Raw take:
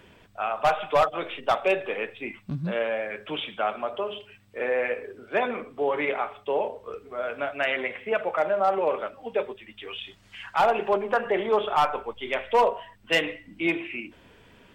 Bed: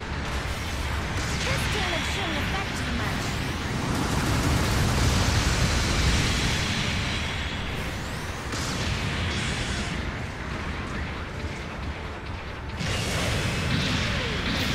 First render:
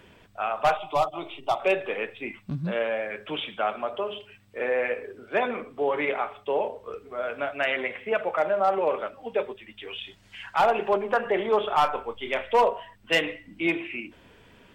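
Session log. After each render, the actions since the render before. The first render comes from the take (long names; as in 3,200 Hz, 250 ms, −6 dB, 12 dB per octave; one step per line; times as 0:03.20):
0:00.77–0:01.60: phaser with its sweep stopped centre 330 Hz, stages 8
0:09.73–0:10.51: notch filter 1,200 Hz, Q 10
0:11.75–0:12.45: double-tracking delay 30 ms −11.5 dB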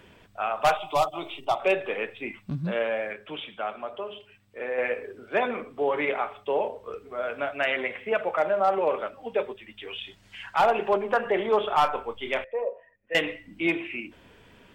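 0:00.62–0:01.45: high-shelf EQ 4,200 Hz +8.5 dB
0:03.13–0:04.78: clip gain −5 dB
0:12.44–0:13.15: formant resonators in series e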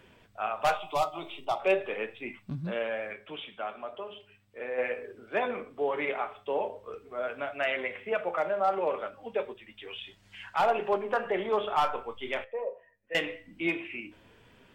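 flanger 0.41 Hz, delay 7.6 ms, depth 4.8 ms, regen +75%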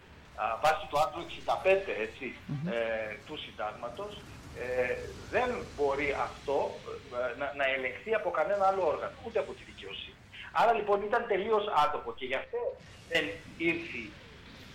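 mix in bed −24.5 dB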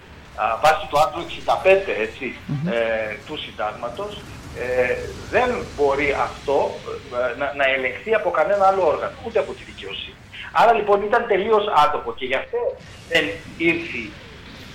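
level +11 dB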